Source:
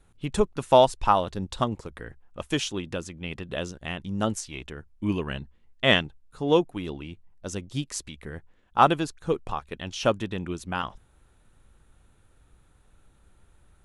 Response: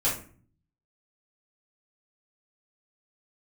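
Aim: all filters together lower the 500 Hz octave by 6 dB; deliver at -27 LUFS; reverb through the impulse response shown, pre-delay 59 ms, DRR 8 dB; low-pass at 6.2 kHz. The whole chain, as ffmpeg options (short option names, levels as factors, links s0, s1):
-filter_complex "[0:a]lowpass=6200,equalizer=f=500:t=o:g=-8,asplit=2[s0][s1];[1:a]atrim=start_sample=2205,adelay=59[s2];[s1][s2]afir=irnorm=-1:irlink=0,volume=0.126[s3];[s0][s3]amix=inputs=2:normalize=0,volume=1.26"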